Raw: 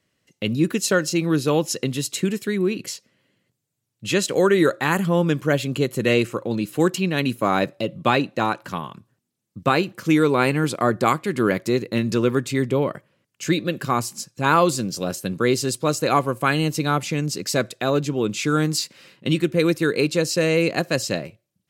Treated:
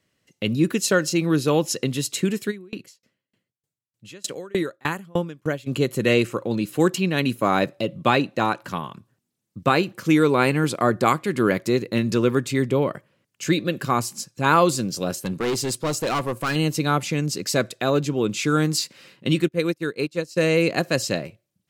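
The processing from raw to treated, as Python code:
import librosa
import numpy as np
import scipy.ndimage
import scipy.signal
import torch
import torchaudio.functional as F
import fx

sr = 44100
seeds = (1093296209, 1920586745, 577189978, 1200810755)

y = fx.tremolo_decay(x, sr, direction='decaying', hz=3.3, depth_db=32, at=(2.5, 5.66), fade=0.02)
y = fx.overload_stage(y, sr, gain_db=20.5, at=(15.2, 16.56))
y = fx.upward_expand(y, sr, threshold_db=-34.0, expansion=2.5, at=(19.47, 20.36), fade=0.02)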